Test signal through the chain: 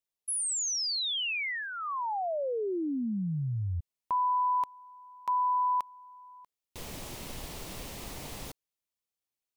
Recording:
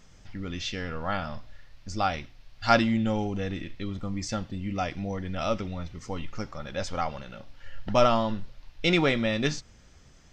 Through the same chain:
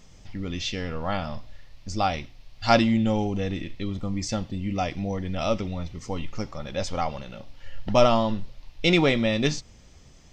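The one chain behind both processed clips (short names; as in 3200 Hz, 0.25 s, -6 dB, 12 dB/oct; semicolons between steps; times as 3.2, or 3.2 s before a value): bell 1500 Hz -7.5 dB 0.55 oct; gain +3.5 dB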